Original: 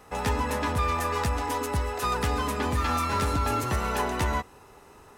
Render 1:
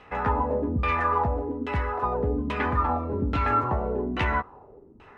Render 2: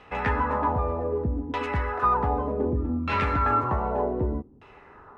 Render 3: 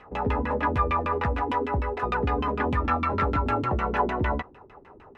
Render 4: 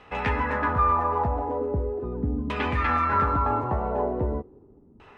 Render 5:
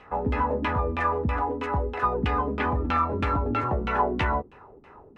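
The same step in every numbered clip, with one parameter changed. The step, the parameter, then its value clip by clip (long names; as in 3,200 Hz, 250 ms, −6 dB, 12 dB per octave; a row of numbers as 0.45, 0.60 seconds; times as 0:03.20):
auto-filter low-pass, speed: 1.2, 0.65, 6.6, 0.4, 3.1 Hertz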